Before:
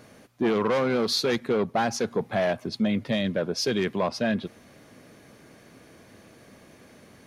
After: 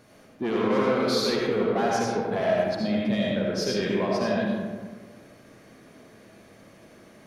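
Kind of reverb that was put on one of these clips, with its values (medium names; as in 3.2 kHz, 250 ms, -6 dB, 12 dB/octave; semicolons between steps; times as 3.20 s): algorithmic reverb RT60 1.6 s, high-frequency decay 0.45×, pre-delay 35 ms, DRR -4 dB; trim -5 dB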